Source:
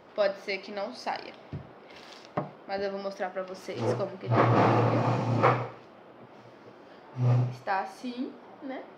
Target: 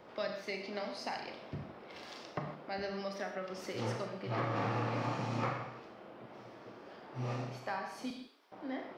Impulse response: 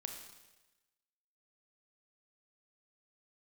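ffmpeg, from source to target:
-filter_complex "[0:a]asettb=1/sr,asplit=3[a][b][c];[a]atrim=end=8.104[d];[b]atrim=start=8.1:end=8.52,asetpts=PTS-STARTPTS,afade=t=in:d=0.004:c=qsin,afade=t=out:st=0.416:d=0.004:c=qsin,aderivative[e];[c]atrim=start=8.516[f];[d][e]acrossfade=d=0.004:c1=hsin:c2=qsin[g];[g][f]acrossfade=d=0.004:c1=qsin:c2=hsin,acrossover=split=230|1200[h][i][j];[h]acompressor=threshold=-39dB:ratio=4[k];[i]acompressor=threshold=-39dB:ratio=4[l];[j]acompressor=threshold=-40dB:ratio=4[m];[k][l][m]amix=inputs=3:normalize=0[n];[1:a]atrim=start_sample=2205,afade=t=out:st=0.22:d=0.01,atrim=end_sample=10143[o];[n][o]afir=irnorm=-1:irlink=0,volume=1.5dB"

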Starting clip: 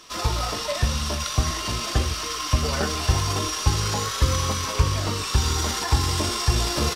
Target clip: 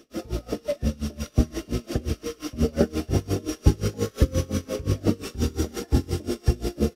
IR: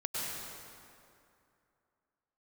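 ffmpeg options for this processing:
-af "equalizer=f=250:t=o:w=1:g=11,equalizer=f=500:t=o:w=1:g=7,equalizer=f=1k:t=o:w=1:g=-11,equalizer=f=2k:t=o:w=1:g=-3,equalizer=f=4k:t=o:w=1:g=-9,equalizer=f=8k:t=o:w=1:g=-7,dynaudnorm=f=320:g=9:m=5.5dB,bandreject=f=1k:w=6.1,aeval=exprs='val(0)*pow(10,-25*(0.5-0.5*cos(2*PI*5.7*n/s))/20)':c=same"

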